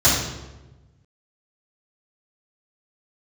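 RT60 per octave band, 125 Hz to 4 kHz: 1.8, 1.4, 1.2, 1.0, 0.90, 0.75 s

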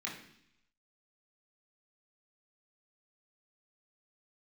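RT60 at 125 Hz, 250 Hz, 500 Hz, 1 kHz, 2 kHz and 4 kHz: 0.90, 0.85, 0.70, 0.70, 0.85, 0.90 s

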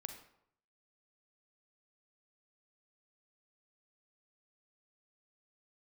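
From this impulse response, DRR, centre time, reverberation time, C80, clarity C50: 6.0 dB, 18 ms, 0.70 s, 10.5 dB, 7.5 dB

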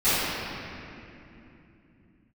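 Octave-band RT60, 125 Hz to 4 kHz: 4.8, 4.7, 3.3, 2.6, 2.8, 1.9 s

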